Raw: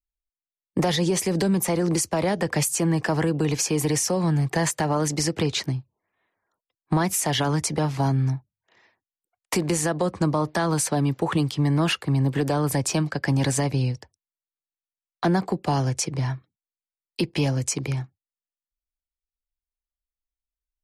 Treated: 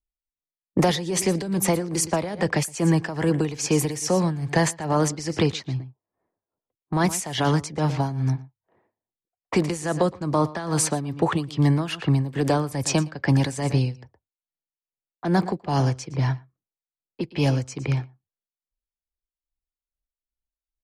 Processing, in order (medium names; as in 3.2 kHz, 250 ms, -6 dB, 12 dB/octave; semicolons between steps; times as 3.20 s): delay 117 ms -16 dB; level-controlled noise filter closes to 580 Hz, open at -18.5 dBFS; tremolo 2.4 Hz, depth 77%; trim +3.5 dB